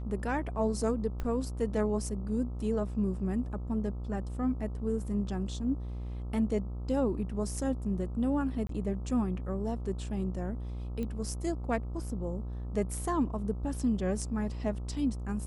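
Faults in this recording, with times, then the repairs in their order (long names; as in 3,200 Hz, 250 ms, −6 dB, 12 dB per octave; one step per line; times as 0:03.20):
mains buzz 60 Hz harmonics 22 −37 dBFS
0:01.20: click −23 dBFS
0:08.67–0:08.69: drop-out 23 ms
0:11.03: click −25 dBFS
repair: click removal
hum removal 60 Hz, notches 22
repair the gap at 0:08.67, 23 ms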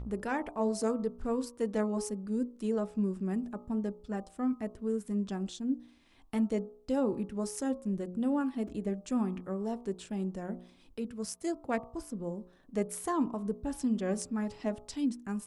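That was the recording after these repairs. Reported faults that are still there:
0:01.20: click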